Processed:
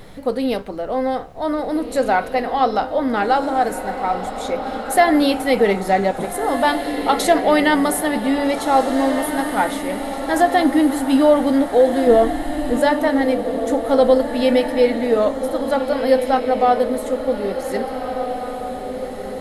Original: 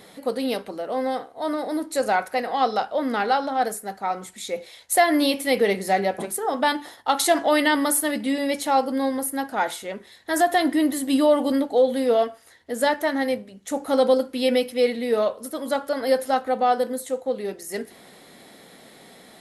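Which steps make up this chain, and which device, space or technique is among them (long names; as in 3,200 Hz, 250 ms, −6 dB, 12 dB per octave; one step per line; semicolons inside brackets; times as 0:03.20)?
car interior (parametric band 130 Hz +7.5 dB 0.77 octaves; high-shelf EQ 3,400 Hz −8 dB; brown noise bed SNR 22 dB)
0:12.07–0:12.77: spectral tilt −2.5 dB per octave
feedback delay with all-pass diffusion 1,686 ms, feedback 45%, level −8 dB
level +4.5 dB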